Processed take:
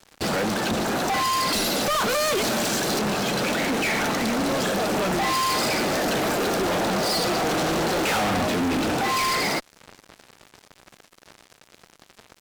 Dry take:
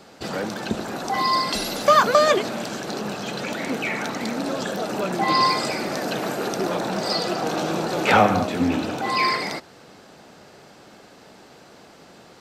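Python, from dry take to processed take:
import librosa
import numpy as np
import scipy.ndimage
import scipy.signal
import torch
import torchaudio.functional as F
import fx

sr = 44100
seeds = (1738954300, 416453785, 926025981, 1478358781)

y = fx.high_shelf(x, sr, hz=4600.0, db=10.5, at=(2.09, 2.99))
y = fx.fuzz(y, sr, gain_db=34.0, gate_db=-42.0)
y = y * librosa.db_to_amplitude(-8.5)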